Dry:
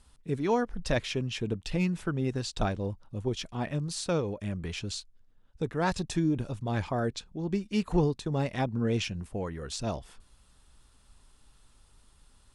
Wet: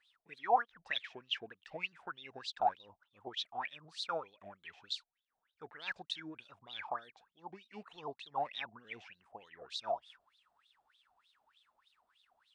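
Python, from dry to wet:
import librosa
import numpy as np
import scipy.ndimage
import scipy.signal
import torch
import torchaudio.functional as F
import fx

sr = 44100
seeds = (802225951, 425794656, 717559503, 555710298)

y = fx.wah_lfo(x, sr, hz=3.3, low_hz=680.0, high_hz=3800.0, q=18.0)
y = fx.vibrato_shape(y, sr, shape='saw_up', rate_hz=5.2, depth_cents=100.0)
y = y * librosa.db_to_amplitude(11.5)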